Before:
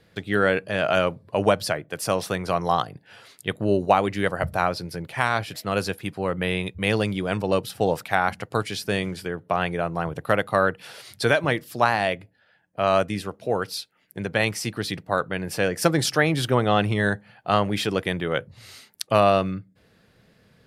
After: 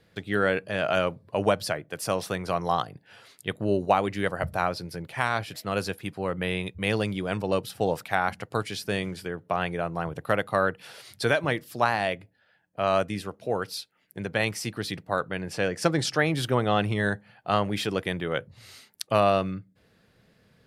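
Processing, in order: 15.41–16.19 s: low-pass 8.2 kHz 12 dB/octave; trim -3.5 dB

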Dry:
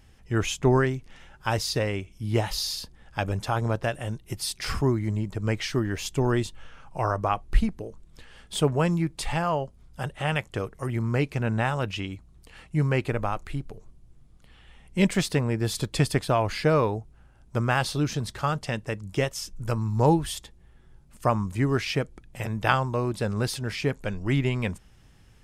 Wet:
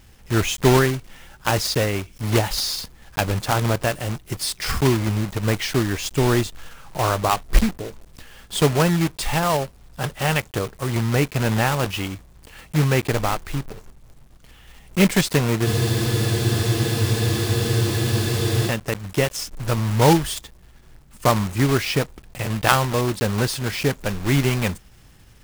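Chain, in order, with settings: block-companded coder 3-bit; spectral freeze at 15.68 s, 3.01 s; trim +5 dB

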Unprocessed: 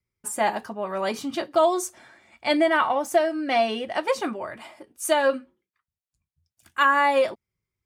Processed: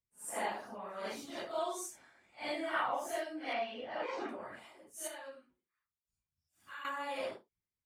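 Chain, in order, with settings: phase randomisation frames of 200 ms; harmonic-percussive split harmonic -11 dB; 3.53–4.29 s: distance through air 160 m; 5.07–6.85 s: compression 8:1, threshold -38 dBFS, peak gain reduction 13 dB; trim -7 dB

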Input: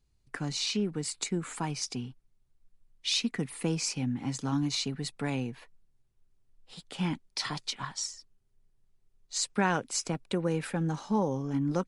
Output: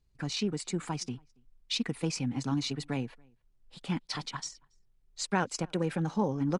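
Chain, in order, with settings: treble shelf 8.1 kHz -8.5 dB; tempo 1.8×; echo from a far wall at 48 m, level -30 dB

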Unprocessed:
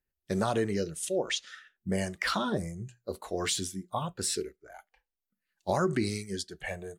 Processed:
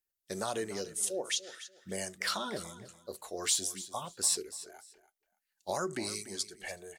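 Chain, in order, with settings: tone controls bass -10 dB, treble +10 dB; on a send: feedback delay 290 ms, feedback 22%, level -15 dB; on the sum: trim -5.5 dB

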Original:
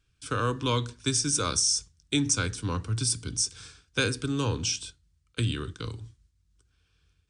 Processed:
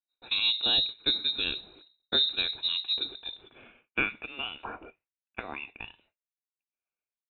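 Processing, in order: high-pass sweep 130 Hz -> 1.2 kHz, 2.87–4.01 s; frequency inversion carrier 3.9 kHz; expander -57 dBFS; trim -3 dB

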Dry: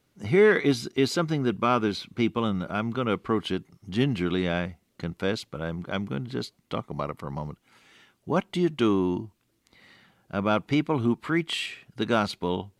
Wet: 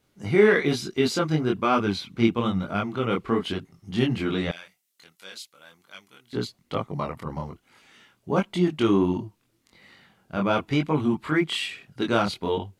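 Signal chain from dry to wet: chorus voices 2, 1.1 Hz, delay 23 ms, depth 3.3 ms; 4.51–6.33 s: differentiator; trim +4.5 dB

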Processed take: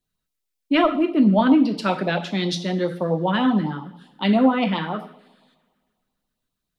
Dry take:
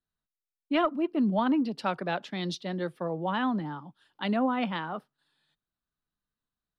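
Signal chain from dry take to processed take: two-slope reverb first 0.53 s, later 1.9 s, from -20 dB, DRR 5.5 dB; LFO notch sine 7.4 Hz 750–1700 Hz; trim +9 dB

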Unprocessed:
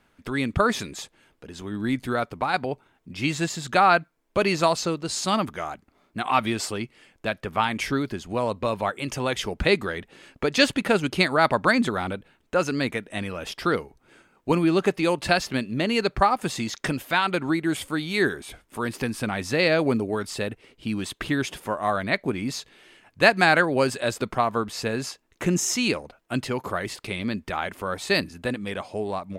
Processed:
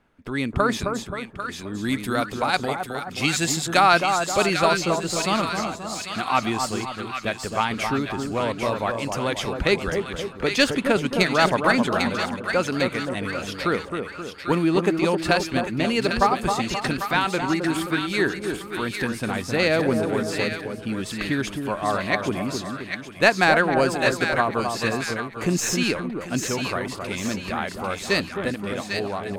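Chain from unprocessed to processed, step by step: tracing distortion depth 0.021 ms; 1.83–4.43 s: treble shelf 3.2 kHz +11.5 dB; two-band feedback delay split 1.3 kHz, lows 264 ms, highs 797 ms, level -5 dB; tape noise reduction on one side only decoder only

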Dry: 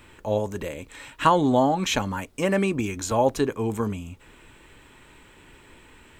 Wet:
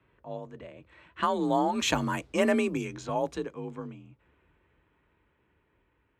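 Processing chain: Doppler pass-by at 2.21 s, 8 m/s, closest 3 m; level-controlled noise filter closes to 2 kHz, open at -24 dBFS; frequency shift +38 Hz

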